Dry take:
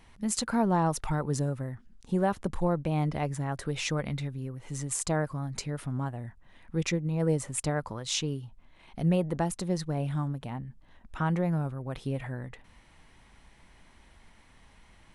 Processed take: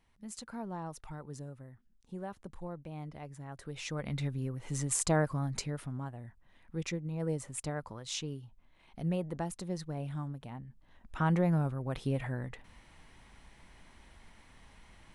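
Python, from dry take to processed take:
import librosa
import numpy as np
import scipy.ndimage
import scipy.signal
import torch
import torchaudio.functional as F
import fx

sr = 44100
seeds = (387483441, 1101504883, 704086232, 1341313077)

y = fx.gain(x, sr, db=fx.line((3.28, -15.0), (3.93, -8.0), (4.27, 0.5), (5.49, 0.5), (6.0, -7.5), (10.66, -7.5), (11.32, 0.0)))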